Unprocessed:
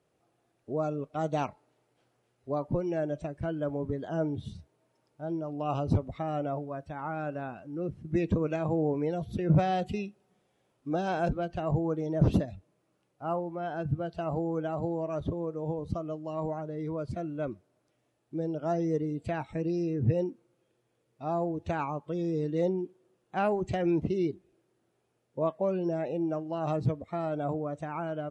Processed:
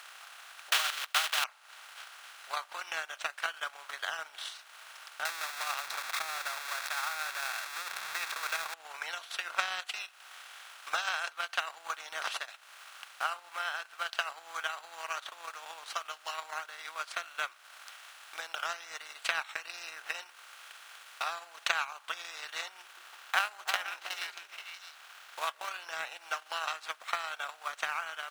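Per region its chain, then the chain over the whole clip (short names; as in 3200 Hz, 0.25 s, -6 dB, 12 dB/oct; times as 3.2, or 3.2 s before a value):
0.72–1.44 block floating point 3-bit + bell 3200 Hz +9 dB 0.82 oct
5.25–8.74 zero-crossing step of -37.5 dBFS + Butterworth band-stop 3000 Hz, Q 3.7
22.81–25.69 median filter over 5 samples + delay with a stepping band-pass 0.159 s, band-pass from 300 Hz, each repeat 1.4 oct, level -4 dB
whole clip: per-bin compression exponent 0.4; HPF 1300 Hz 24 dB/oct; transient shaper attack +12 dB, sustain -12 dB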